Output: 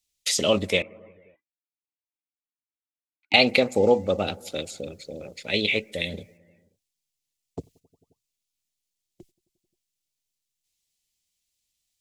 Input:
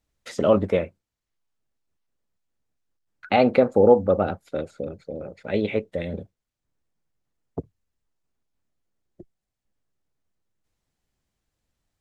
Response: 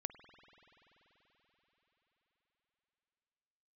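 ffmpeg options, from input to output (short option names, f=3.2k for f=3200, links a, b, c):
-filter_complex "[0:a]asettb=1/sr,asplit=3[a][b][c];[a]atrim=end=0.824[d];[b]atrim=start=0.82:end=3.34,asetpts=PTS-STARTPTS,afade=t=in:d=0.004:c=qsin,afade=t=out:st=2.516:d=0.004:c=qsin,asplit=3[e][f][g];[e]bandpass=f=300:t=q:w=8,volume=0dB[h];[f]bandpass=f=870:t=q:w=8,volume=-6dB[i];[g]bandpass=f=2.24k:t=q:w=8,volume=-9dB[j];[h][i][j]amix=inputs=3:normalize=0[k];[c]atrim=start=3.336[l];[d][k]acrossfade=d=0.004:c1=hsin:c2=qsin[m];[m][l]acrossfade=d=0.004:c1=qsin:c2=hsin,agate=range=-11dB:threshold=-52dB:ratio=16:detection=peak,aexciter=amount=10.6:drive=4.4:freq=2.2k,asplit=2[n][o];[1:a]atrim=start_sample=2205,afade=t=out:st=0.37:d=0.01,atrim=end_sample=16758,asetrate=24255,aresample=44100[p];[o][p]afir=irnorm=-1:irlink=0,volume=-12dB[q];[n][q]amix=inputs=2:normalize=0,volume=-6dB"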